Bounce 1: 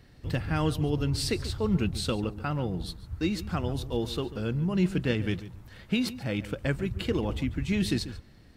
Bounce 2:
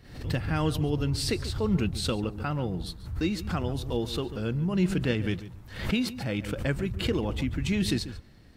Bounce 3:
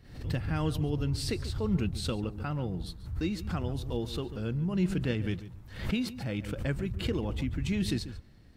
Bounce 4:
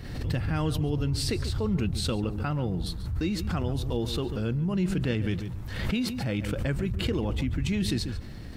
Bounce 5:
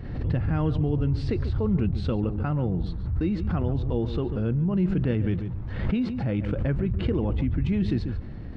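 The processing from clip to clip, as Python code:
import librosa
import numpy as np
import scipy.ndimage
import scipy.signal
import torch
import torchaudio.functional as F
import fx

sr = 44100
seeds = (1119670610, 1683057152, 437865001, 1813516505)

y1 = fx.pre_swell(x, sr, db_per_s=93.0)
y2 = fx.low_shelf(y1, sr, hz=220.0, db=4.5)
y2 = F.gain(torch.from_numpy(y2), -5.5).numpy()
y3 = fx.env_flatten(y2, sr, amount_pct=50)
y4 = fx.spacing_loss(y3, sr, db_at_10k=40)
y4 = F.gain(torch.from_numpy(y4), 4.0).numpy()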